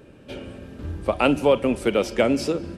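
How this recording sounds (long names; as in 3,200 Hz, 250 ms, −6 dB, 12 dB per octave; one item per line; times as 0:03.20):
background noise floor −48 dBFS
spectral slope −4.5 dB per octave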